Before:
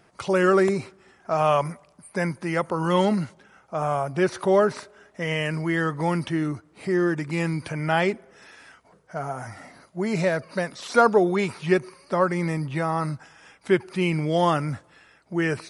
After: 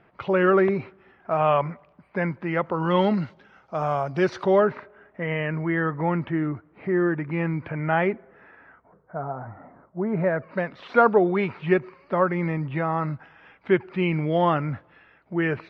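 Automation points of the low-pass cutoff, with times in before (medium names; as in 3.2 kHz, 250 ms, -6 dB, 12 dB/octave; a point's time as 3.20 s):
low-pass 24 dB/octave
2.53 s 2.9 kHz
3.75 s 5.1 kHz
4.38 s 5.1 kHz
4.78 s 2.3 kHz
8.12 s 2.3 kHz
9.29 s 1.3 kHz
9.99 s 1.3 kHz
10.67 s 2.9 kHz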